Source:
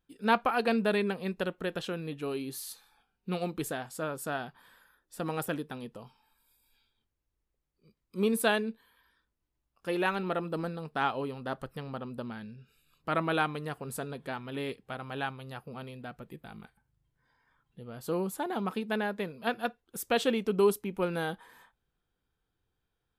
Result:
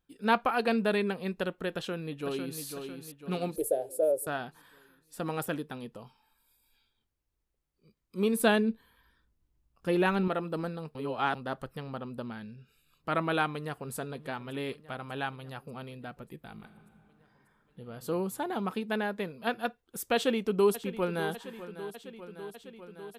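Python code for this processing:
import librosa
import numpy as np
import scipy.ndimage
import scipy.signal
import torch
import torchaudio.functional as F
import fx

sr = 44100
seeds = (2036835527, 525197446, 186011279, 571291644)

y = fx.echo_throw(x, sr, start_s=1.7, length_s=0.91, ms=500, feedback_pct=50, wet_db=-6.5)
y = fx.curve_eq(y, sr, hz=(100.0, 190.0, 300.0, 580.0, 1100.0, 2000.0, 3300.0, 7000.0, 10000.0, 15000.0), db=(0, -29, -2, 15, -24, -17, -16, -8, 7, 1), at=(3.56, 4.27))
y = fx.low_shelf(y, sr, hz=280.0, db=11.5, at=(8.4, 10.28))
y = fx.echo_throw(y, sr, start_s=13.52, length_s=0.41, ms=590, feedback_pct=70, wet_db=-16.0)
y = fx.reverb_throw(y, sr, start_s=16.52, length_s=1.35, rt60_s=2.9, drr_db=5.5)
y = fx.echo_throw(y, sr, start_s=20.14, length_s=1.16, ms=600, feedback_pct=75, wet_db=-14.0)
y = fx.edit(y, sr, fx.reverse_span(start_s=10.95, length_s=0.4), tone=tone)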